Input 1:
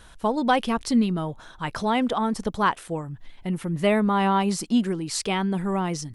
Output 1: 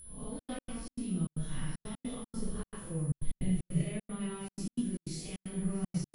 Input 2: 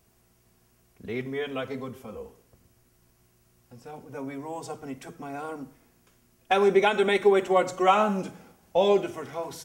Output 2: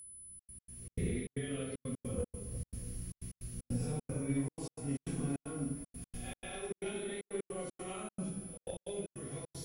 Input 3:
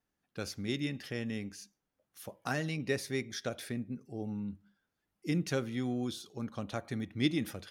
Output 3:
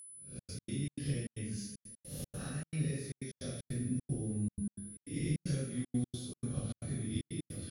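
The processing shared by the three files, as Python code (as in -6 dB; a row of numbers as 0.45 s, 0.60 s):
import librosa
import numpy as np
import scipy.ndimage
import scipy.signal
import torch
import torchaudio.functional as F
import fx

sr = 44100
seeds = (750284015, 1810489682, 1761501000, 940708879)

p1 = fx.spec_swells(x, sr, rise_s=0.48)
p2 = fx.recorder_agc(p1, sr, target_db=-12.0, rise_db_per_s=31.0, max_gain_db=30)
p3 = fx.rev_plate(p2, sr, seeds[0], rt60_s=0.98, hf_ratio=0.75, predelay_ms=0, drr_db=-7.5)
p4 = fx.cheby_harmonics(p3, sr, harmonics=(3,), levels_db=(-22,), full_scale_db=1.0)
p5 = fx.tone_stack(p4, sr, knobs='10-0-1')
p6 = p5 + 10.0 ** (-40.0 / 20.0) * np.sin(2.0 * np.pi * 10000.0 * np.arange(len(p5)) / sr)
p7 = fx.high_shelf(p6, sr, hz=7300.0, db=-9.0)
p8 = p7 + fx.echo_single(p7, sr, ms=638, db=-23.0, dry=0)
p9 = fx.step_gate(p8, sr, bpm=154, pattern='xxxx.x.xx.xxx.', floor_db=-60.0, edge_ms=4.5)
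y = p9 * librosa.db_to_amplitude(-3.0)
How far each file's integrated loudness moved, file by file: -13.0 LU, -15.5 LU, -2.5 LU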